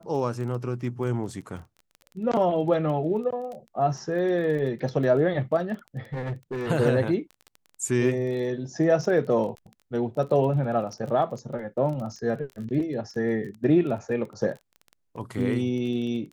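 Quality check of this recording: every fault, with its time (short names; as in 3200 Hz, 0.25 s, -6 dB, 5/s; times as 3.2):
crackle 18/s -34 dBFS
6.13–6.68 clipped -27 dBFS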